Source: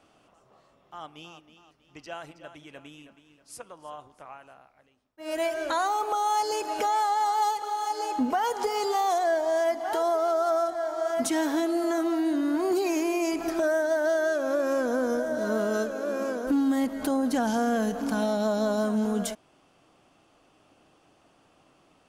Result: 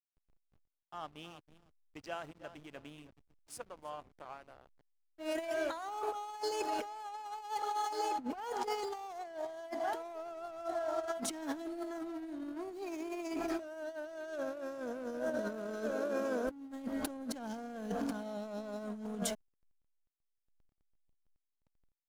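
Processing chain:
compressor whose output falls as the input rises −30 dBFS, ratio −0.5
slack as between gear wheels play −40.5 dBFS
level −7.5 dB

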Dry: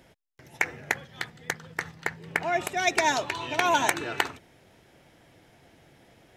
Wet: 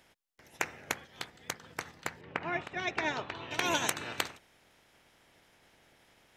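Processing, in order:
ceiling on every frequency bin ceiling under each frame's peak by 14 dB
0:02.21–0:03.51: low-pass filter 2,600 Hz 12 dB per octave
level −7 dB

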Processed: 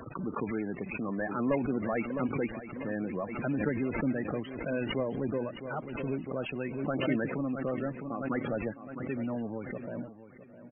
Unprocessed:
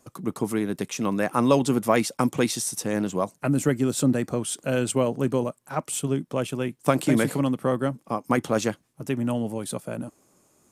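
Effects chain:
variable-slope delta modulation 16 kbit/s
dynamic equaliser 130 Hz, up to −4 dB, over −40 dBFS, Q 1.3
in parallel at −12 dB: log-companded quantiser 2 bits
on the sum: spectral peaks only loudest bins 32
high shelf with overshoot 1,500 Hz +7 dB, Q 1.5
on a send: repeating echo 660 ms, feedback 37%, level −14 dB
on the sum: background raised ahead of every attack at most 48 dB per second
level −8.5 dB

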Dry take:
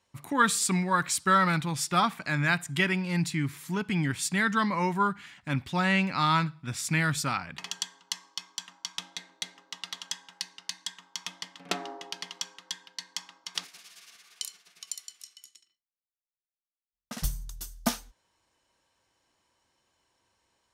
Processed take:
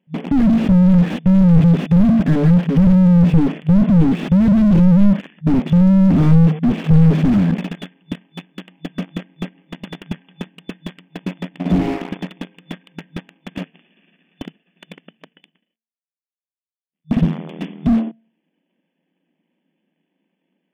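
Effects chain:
running median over 41 samples
flat-topped bell 740 Hz −11 dB 2.4 octaves
notch filter 1,400 Hz, Q 6
hum removal 225.1 Hz, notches 3
leveller curve on the samples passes 3
brick-wall band-pass 160–3,500 Hz
boost into a limiter +21.5 dB
slew-rate limiting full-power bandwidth 56 Hz
level +1 dB

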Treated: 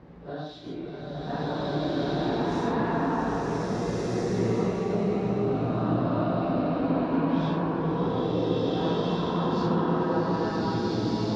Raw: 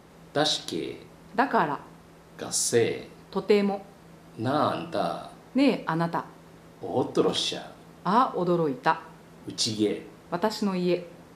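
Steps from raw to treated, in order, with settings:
random phases in long frames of 200 ms
low-shelf EQ 490 Hz +9.5 dB
downward compressor 6 to 1, threshold −31 dBFS, peak gain reduction 19.5 dB
high-frequency loss of the air 240 metres
slow-attack reverb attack 1,700 ms, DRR −11.5 dB
level −2.5 dB

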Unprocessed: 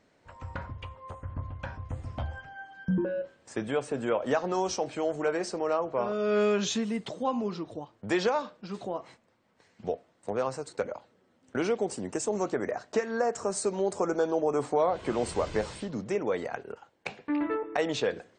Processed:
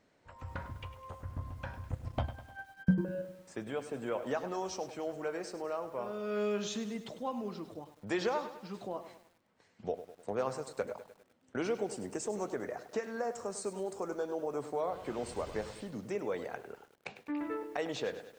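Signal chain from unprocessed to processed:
0:01.92–0:03.17: transient designer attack +11 dB, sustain −10 dB
speech leveller within 4 dB 2 s
feedback echo at a low word length 101 ms, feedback 55%, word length 8 bits, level −12 dB
level −8 dB

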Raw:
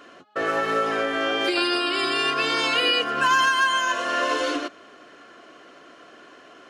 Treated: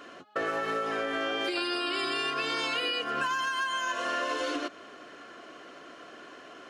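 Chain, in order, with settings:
downward compressor, threshold −28 dBFS, peak gain reduction 12 dB

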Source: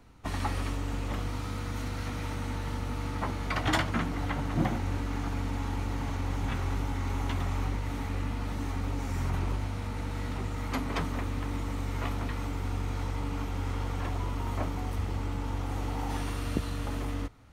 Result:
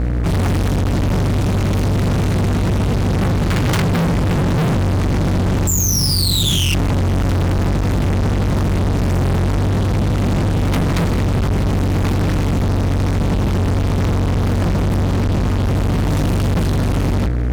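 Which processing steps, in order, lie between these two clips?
high-pass filter 62 Hz 6 dB per octave
low shelf with overshoot 250 Hz +13.5 dB, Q 3
mains hum 60 Hz, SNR 13 dB
sound drawn into the spectrogram fall, 0:05.67–0:06.75, 2,700–7,500 Hz −24 dBFS
fuzz pedal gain 37 dB, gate −42 dBFS
level −1.5 dB

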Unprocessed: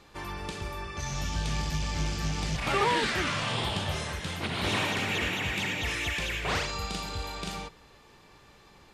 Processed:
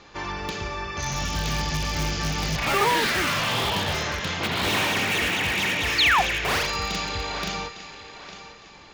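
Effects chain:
Chebyshev low-pass filter 6,900 Hz, order 6
low-shelf EQ 200 Hz −5 dB
feedback echo with a high-pass in the loop 856 ms, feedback 32%, high-pass 200 Hz, level −13 dB
in parallel at −8 dB: wrap-around overflow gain 26 dB
on the sum: sound drawn into the spectrogram fall, 0:05.98–0:06.22, 660–4,800 Hz −24 dBFS
four-comb reverb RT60 0.45 s, combs from 30 ms, DRR 18 dB
level +5 dB

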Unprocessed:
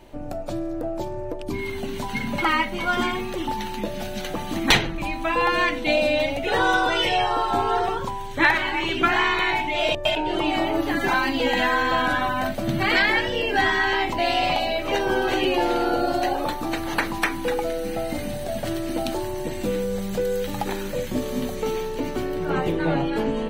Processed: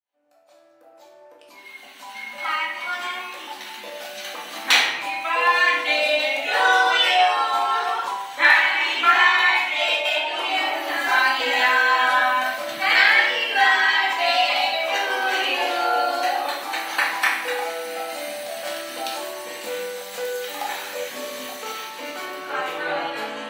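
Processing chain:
fade in at the beginning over 5.69 s
high-pass filter 970 Hz 12 dB per octave
rectangular room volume 330 cubic metres, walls mixed, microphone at 2 metres

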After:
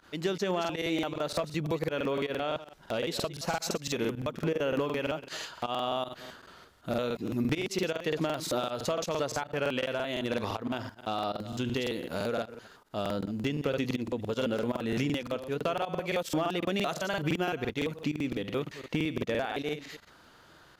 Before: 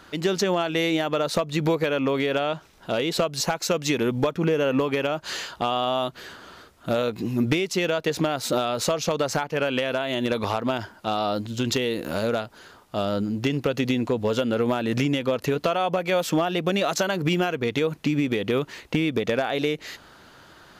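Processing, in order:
delay that plays each chunk backwards 128 ms, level −13 dB
fake sidechain pumping 159 BPM, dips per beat 1, −19 dB, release 68 ms
regular buffer underruns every 0.17 s, samples 2,048, repeat, from 0:00.60
level −7 dB

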